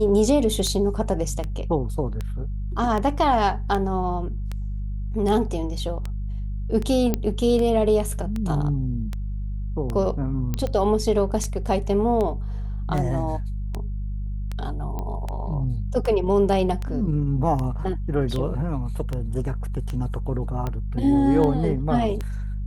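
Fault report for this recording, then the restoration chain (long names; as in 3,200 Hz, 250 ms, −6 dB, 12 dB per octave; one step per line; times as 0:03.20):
mains hum 50 Hz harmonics 4 −28 dBFS
scratch tick 78 rpm −16 dBFS
0:07.14: click −9 dBFS
0:10.54: click −12 dBFS
0:14.99: click −18 dBFS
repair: click removal
hum removal 50 Hz, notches 4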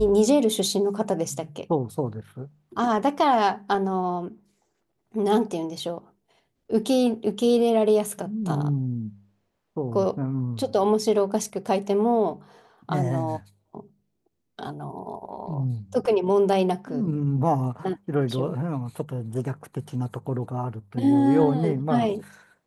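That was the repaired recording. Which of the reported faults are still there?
none of them is left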